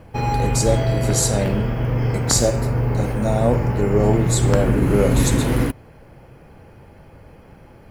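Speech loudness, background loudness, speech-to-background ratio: −22.0 LKFS, −21.0 LKFS, −1.0 dB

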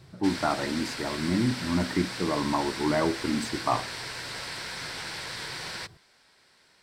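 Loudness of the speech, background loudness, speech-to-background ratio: −29.0 LKFS, −35.0 LKFS, 6.0 dB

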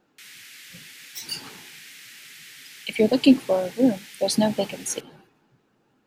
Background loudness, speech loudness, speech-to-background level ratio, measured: −42.5 LKFS, −23.0 LKFS, 19.5 dB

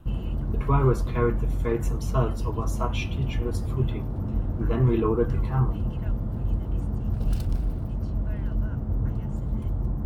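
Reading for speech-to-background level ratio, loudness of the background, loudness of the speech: 1.5 dB, −29.5 LKFS, −28.0 LKFS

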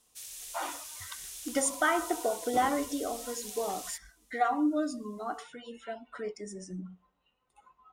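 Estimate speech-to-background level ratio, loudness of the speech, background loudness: 8.0 dB, −33.0 LKFS, −41.0 LKFS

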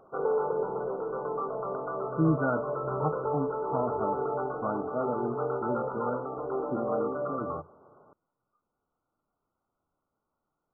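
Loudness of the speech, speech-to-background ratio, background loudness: −34.0 LKFS, −1.5 dB, −32.5 LKFS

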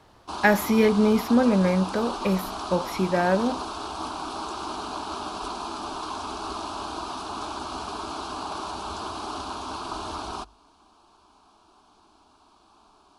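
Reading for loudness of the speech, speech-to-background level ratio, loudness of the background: −23.0 LKFS, 10.5 dB, −33.5 LKFS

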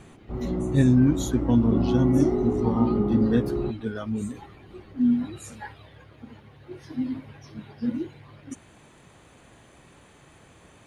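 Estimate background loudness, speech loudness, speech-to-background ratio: −27.5 LKFS, −25.0 LKFS, 2.5 dB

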